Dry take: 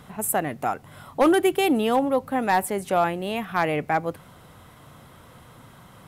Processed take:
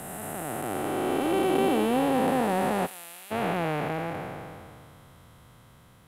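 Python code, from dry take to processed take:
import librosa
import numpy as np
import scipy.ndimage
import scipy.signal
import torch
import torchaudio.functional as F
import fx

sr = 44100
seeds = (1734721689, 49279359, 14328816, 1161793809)

y = fx.spec_blur(x, sr, span_ms=1010.0)
y = fx.pre_emphasis(y, sr, coefficient=0.97, at=(2.85, 3.3), fade=0.02)
y = fx.band_widen(y, sr, depth_pct=40)
y = y * librosa.db_to_amplitude(4.0)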